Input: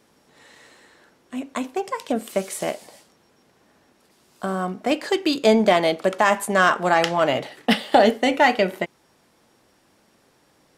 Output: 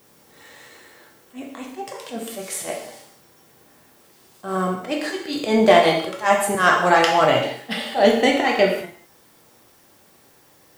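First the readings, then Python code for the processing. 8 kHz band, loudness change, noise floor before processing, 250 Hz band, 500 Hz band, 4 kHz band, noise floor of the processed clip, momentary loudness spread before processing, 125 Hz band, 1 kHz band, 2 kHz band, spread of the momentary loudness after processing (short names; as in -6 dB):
+3.0 dB, +2.0 dB, -61 dBFS, -0.5 dB, +1.5 dB, +1.5 dB, -54 dBFS, 13 LU, +1.0 dB, +1.0 dB, +1.0 dB, 19 LU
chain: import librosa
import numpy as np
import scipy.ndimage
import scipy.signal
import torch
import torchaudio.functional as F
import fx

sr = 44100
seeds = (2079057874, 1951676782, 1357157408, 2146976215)

y = fx.dmg_noise_colour(x, sr, seeds[0], colour='blue', level_db=-62.0)
y = fx.auto_swell(y, sr, attack_ms=122.0)
y = fx.rev_gated(y, sr, seeds[1], gate_ms=230, shape='falling', drr_db=-0.5)
y = F.gain(torch.from_numpy(y), 1.0).numpy()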